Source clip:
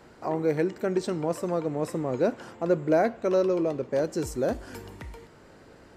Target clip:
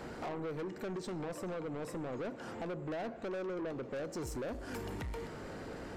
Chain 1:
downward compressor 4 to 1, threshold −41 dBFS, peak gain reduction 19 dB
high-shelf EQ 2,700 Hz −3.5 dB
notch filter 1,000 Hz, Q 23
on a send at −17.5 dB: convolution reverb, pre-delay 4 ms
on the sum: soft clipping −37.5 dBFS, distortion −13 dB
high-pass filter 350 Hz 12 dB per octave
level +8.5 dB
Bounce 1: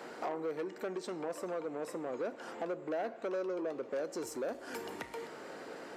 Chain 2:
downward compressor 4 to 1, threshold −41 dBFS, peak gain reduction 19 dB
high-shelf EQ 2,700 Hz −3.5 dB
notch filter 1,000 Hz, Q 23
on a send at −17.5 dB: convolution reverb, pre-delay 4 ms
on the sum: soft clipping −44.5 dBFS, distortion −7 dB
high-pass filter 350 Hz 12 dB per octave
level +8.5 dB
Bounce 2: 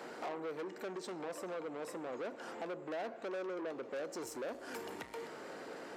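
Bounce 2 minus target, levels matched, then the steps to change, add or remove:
250 Hz band −3.0 dB
remove: high-pass filter 350 Hz 12 dB per octave

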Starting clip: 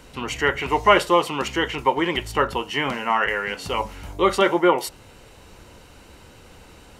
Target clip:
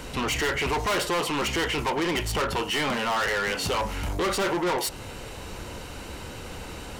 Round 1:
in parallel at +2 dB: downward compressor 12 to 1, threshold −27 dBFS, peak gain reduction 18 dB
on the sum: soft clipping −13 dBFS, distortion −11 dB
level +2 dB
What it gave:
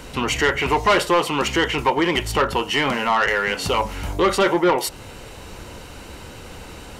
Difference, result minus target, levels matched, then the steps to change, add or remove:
soft clipping: distortion −8 dB
change: soft clipping −25 dBFS, distortion −3 dB

